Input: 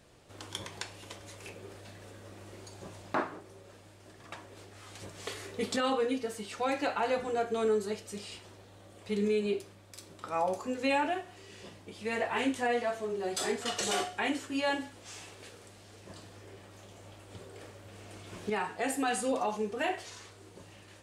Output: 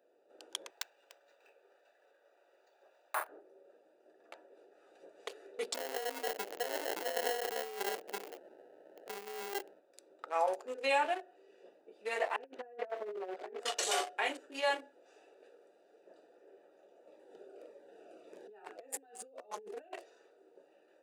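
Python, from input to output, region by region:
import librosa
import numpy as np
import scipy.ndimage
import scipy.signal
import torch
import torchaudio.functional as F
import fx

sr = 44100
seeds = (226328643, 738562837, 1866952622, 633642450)

y = fx.chain(x, sr, fx.highpass(hz=910.0, slope=12),
    fx.resample_bad(factor=4, down='none', up='hold'), at=(0.7, 3.29))
y = fx.chain(y, sr, fx.low_shelf(hz=230.0, db=7.0),
    fx.over_compress(threshold_db=-34.0, ratio=-1.0),
    fx.sample_hold(seeds[0], rate_hz=1200.0, jitter_pct=0), at=(5.74, 9.8))
y = fx.chain(y, sr, fx.low_shelf(hz=140.0, db=6.0),
    fx.over_compress(threshold_db=-36.0, ratio=-0.5),
    fx.lowpass(hz=2100.0, slope=12), at=(12.36, 13.6))
y = fx.chain(y, sr, fx.over_compress(threshold_db=-38.0, ratio=-0.5),
    fx.notch_cascade(direction='falling', hz=1.7), at=(17.07, 20.04))
y = fx.wiener(y, sr, points=41)
y = scipy.signal.sosfilt(scipy.signal.butter(4, 430.0, 'highpass', fs=sr, output='sos'), y)
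y = fx.high_shelf(y, sr, hz=11000.0, db=4.5)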